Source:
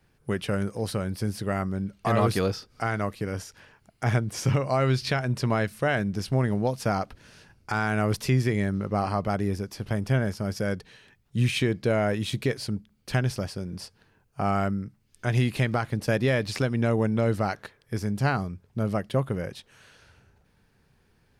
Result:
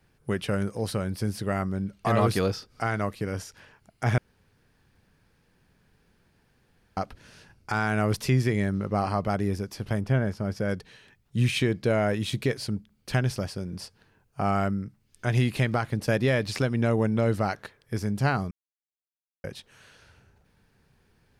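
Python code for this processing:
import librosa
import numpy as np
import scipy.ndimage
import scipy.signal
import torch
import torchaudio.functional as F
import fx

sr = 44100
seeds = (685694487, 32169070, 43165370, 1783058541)

y = fx.high_shelf(x, sr, hz=3600.0, db=-10.0, at=(10.01, 10.69))
y = fx.edit(y, sr, fx.room_tone_fill(start_s=4.18, length_s=2.79),
    fx.silence(start_s=18.51, length_s=0.93), tone=tone)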